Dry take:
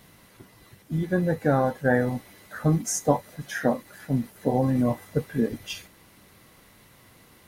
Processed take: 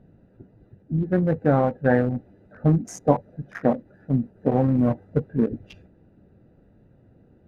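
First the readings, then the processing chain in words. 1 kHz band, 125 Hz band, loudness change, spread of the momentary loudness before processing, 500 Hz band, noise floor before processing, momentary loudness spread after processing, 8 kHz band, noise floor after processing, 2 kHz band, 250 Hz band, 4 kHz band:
+1.0 dB, +3.5 dB, +2.5 dB, 11 LU, +2.0 dB, −55 dBFS, 7 LU, −12.5 dB, −57 dBFS, −2.5 dB, +3.0 dB, below −10 dB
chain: adaptive Wiener filter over 41 samples
low-pass filter 1,600 Hz 6 dB per octave
level +3.5 dB

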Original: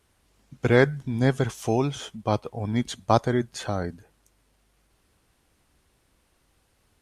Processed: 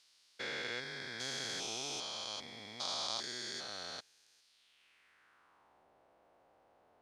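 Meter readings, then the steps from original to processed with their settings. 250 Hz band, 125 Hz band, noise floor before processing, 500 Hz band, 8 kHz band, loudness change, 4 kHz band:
−26.5 dB, −31.5 dB, −68 dBFS, −23.0 dB, −1.5 dB, −14.5 dB, +1.0 dB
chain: spectrum averaged block by block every 400 ms
band-pass filter sweep 4,600 Hz → 690 Hz, 0:04.46–0:05.86
level +11 dB

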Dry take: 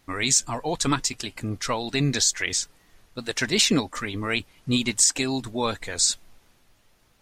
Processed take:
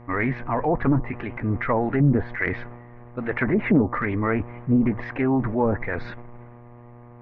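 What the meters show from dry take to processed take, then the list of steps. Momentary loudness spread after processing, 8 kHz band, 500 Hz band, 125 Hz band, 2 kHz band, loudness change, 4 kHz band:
12 LU, below −40 dB, +5.0 dB, +6.5 dB, +1.0 dB, 0.0 dB, below −25 dB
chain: elliptic low-pass filter 2,100 Hz, stop band 80 dB
treble cut that deepens with the level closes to 420 Hz, closed at −20.5 dBFS
hum with harmonics 120 Hz, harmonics 10, −53 dBFS −5 dB per octave
transient designer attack −3 dB, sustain +7 dB
highs frequency-modulated by the lows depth 0.2 ms
level +7 dB

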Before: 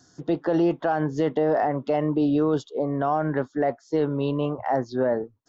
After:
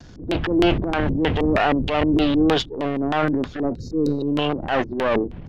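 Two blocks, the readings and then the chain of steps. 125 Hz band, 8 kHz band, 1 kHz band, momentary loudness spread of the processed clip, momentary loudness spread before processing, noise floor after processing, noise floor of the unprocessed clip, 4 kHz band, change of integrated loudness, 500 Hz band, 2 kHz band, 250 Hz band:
+3.5 dB, can't be measured, +2.0 dB, 6 LU, 4 LU, −39 dBFS, −60 dBFS, +16.0 dB, +3.5 dB, +1.0 dB, +9.0 dB, +4.5 dB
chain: gain on one half-wave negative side −12 dB
wind on the microphone 86 Hz −32 dBFS
auto-filter low-pass square 3.2 Hz 310–3,000 Hz
spectral tilt +2.5 dB per octave
gain on a spectral selection 0:03.74–0:04.28, 550–3,700 Hz −29 dB
transient designer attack −7 dB, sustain +9 dB
pitch vibrato 0.54 Hz 19 cents
every ending faded ahead of time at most 370 dB per second
level +8 dB

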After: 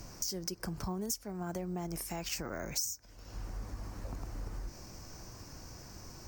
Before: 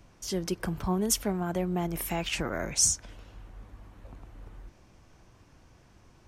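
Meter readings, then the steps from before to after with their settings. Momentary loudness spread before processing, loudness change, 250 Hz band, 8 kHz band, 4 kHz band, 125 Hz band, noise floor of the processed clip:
9 LU, −11.0 dB, −8.5 dB, −9.5 dB, −6.5 dB, −6.0 dB, −55 dBFS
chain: high shelf with overshoot 4,200 Hz +6.5 dB, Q 3
downward compressor 8 to 1, threshold −43 dBFS, peak gain reduction 31.5 dB
bad sample-rate conversion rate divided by 2×, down filtered, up hold
level +7.5 dB

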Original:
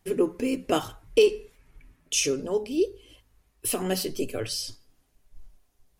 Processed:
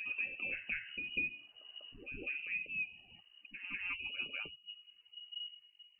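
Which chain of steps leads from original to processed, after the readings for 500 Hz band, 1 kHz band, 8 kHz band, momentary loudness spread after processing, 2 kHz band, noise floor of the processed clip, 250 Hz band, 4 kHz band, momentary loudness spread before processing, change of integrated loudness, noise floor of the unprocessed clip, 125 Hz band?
−34.0 dB, −24.0 dB, below −40 dB, 16 LU, +2.0 dB, −68 dBFS, −27.0 dB, −10.5 dB, 10 LU, −13.0 dB, −68 dBFS, −22.0 dB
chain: hum removal 323.1 Hz, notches 3
dynamic equaliser 950 Hz, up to +3 dB, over −35 dBFS, Q 1.1
downward compressor 2.5 to 1, threshold −39 dBFS, peak gain reduction 16.5 dB
spectral peaks only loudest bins 64
voice inversion scrambler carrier 2,900 Hz
high-frequency loss of the air 160 metres
backwards echo 195 ms −6.5 dB
level −1.5 dB

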